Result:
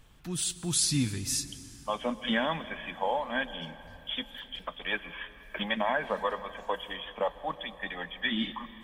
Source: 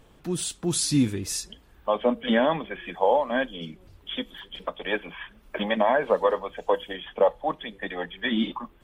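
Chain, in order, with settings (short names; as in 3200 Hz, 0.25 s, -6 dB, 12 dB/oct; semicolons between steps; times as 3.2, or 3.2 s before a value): bell 430 Hz -12 dB 2.1 oct; plate-style reverb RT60 3.7 s, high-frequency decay 0.65×, pre-delay 0.11 s, DRR 14.5 dB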